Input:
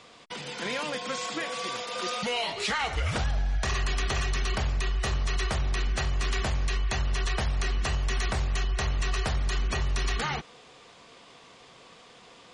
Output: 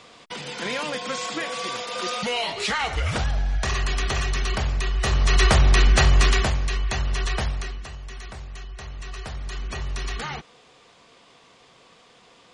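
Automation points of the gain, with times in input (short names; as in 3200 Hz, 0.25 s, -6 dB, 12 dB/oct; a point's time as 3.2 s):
4.91 s +3.5 dB
5.45 s +12 dB
6.2 s +12 dB
6.62 s +3 dB
7.45 s +3 dB
7.88 s -9.5 dB
8.79 s -9.5 dB
9.9 s -1.5 dB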